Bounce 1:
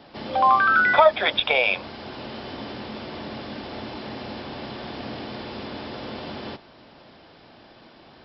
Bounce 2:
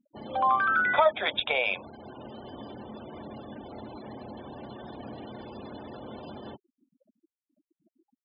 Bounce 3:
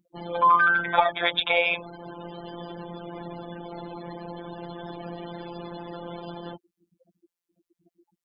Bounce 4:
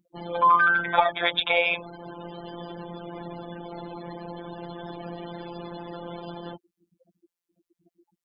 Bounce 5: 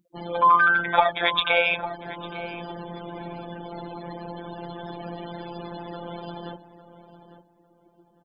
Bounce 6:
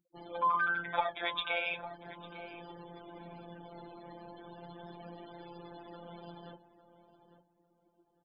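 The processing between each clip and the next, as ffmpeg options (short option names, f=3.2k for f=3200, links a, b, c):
-af "afftfilt=real='re*gte(hypot(re,im),0.0224)':imag='im*gte(hypot(re,im),0.0224)':win_size=1024:overlap=0.75,volume=-6.5dB"
-af "afftfilt=real='hypot(re,im)*cos(PI*b)':imag='0':win_size=1024:overlap=0.75,volume=8dB"
-af anull
-filter_complex "[0:a]asplit=2[a][b];[b]adelay=852,lowpass=f=1.6k:p=1,volume=-12.5dB,asplit=2[c][d];[d]adelay=852,lowpass=f=1.6k:p=1,volume=0.26,asplit=2[e][f];[f]adelay=852,lowpass=f=1.6k:p=1,volume=0.26[g];[a][c][e][g]amix=inputs=4:normalize=0,volume=1.5dB"
-af "flanger=delay=2.2:depth=6.9:regen=-53:speed=0.36:shape=sinusoidal,volume=-8.5dB"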